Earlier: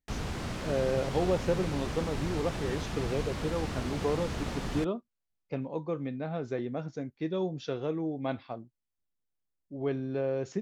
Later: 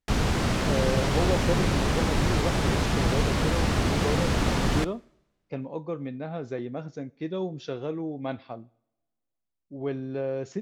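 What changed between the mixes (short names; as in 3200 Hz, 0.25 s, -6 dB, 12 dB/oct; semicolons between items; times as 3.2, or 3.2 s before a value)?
background +10.0 dB; reverb: on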